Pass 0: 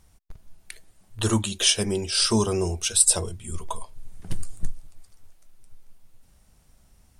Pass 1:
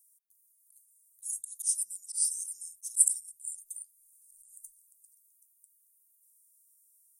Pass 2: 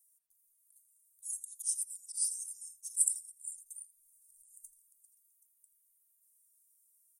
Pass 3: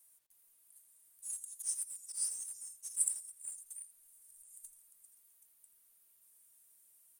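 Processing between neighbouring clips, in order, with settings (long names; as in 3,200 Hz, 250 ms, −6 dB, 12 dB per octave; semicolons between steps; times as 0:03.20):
inverse Chebyshev high-pass filter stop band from 2,400 Hz, stop band 70 dB; volume swells 113 ms; level +7 dB
single-tap delay 83 ms −16.5 dB; flanger whose copies keep moving one way falling 0.73 Hz
mu-law and A-law mismatch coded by mu; level −4.5 dB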